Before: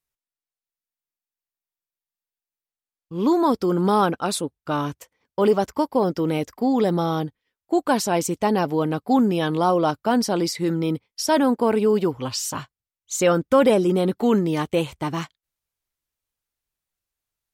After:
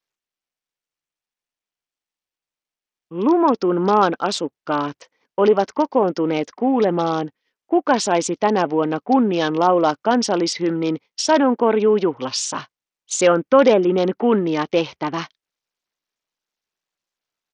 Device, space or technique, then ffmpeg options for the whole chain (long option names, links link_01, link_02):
Bluetooth headset: -af "highpass=240,aresample=16000,aresample=44100,volume=4dB" -ar 48000 -c:a sbc -b:a 64k